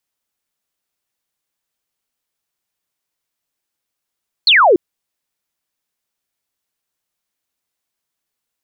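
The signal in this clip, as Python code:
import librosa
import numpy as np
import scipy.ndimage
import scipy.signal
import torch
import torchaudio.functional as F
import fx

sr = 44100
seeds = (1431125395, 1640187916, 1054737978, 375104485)

y = fx.laser_zap(sr, level_db=-6.5, start_hz=4500.0, end_hz=320.0, length_s=0.29, wave='sine')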